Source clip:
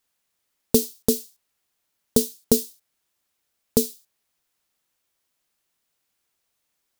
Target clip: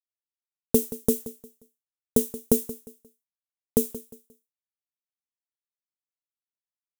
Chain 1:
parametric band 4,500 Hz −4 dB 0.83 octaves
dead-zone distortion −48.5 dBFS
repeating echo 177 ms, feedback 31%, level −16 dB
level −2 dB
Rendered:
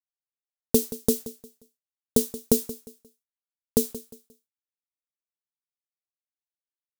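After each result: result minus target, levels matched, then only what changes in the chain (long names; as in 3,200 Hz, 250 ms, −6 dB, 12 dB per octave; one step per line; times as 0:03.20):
4,000 Hz band +7.5 dB; dead-zone distortion: distortion +7 dB
change: parametric band 4,500 Hz −15 dB 0.83 octaves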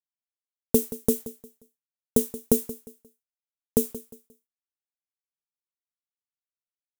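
dead-zone distortion: distortion +7 dB
change: dead-zone distortion −57.5 dBFS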